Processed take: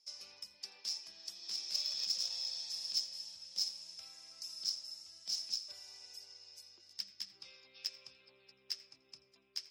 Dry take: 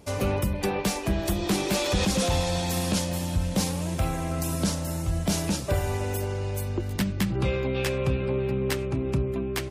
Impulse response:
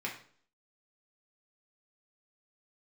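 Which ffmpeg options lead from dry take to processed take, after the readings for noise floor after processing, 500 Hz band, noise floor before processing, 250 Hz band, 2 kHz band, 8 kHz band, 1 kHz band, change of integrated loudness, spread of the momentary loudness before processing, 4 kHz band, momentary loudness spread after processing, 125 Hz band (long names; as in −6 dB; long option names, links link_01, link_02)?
−70 dBFS, below −40 dB, −31 dBFS, below −40 dB, −25.0 dB, −12.5 dB, below −30 dB, −12.5 dB, 4 LU, −4.0 dB, 19 LU, below −40 dB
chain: -filter_complex "[0:a]bandpass=frequency=5200:width_type=q:width=18:csg=0,aeval=exprs='0.0316*(cos(1*acos(clip(val(0)/0.0316,-1,1)))-cos(1*PI/2))+0.00398*(cos(3*acos(clip(val(0)/0.0316,-1,1)))-cos(3*PI/2))':channel_layout=same,asplit=2[link_01][link_02];[1:a]atrim=start_sample=2205,adelay=83[link_03];[link_02][link_03]afir=irnorm=-1:irlink=0,volume=-17.5dB[link_04];[link_01][link_04]amix=inputs=2:normalize=0,volume=9.5dB"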